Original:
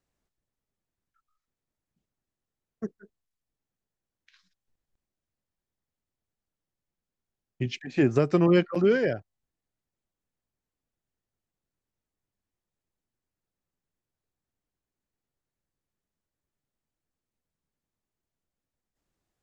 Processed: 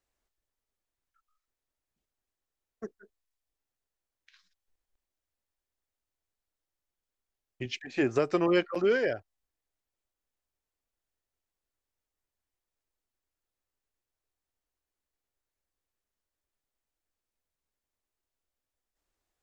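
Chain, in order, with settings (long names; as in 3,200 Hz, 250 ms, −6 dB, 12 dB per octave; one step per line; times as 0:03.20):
parametric band 160 Hz −13.5 dB 1.5 octaves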